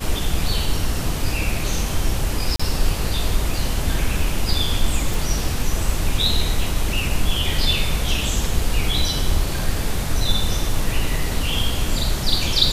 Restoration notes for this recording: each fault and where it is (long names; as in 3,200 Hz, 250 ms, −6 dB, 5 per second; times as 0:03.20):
0:02.56–0:02.60: drop-out 35 ms
0:05.14: click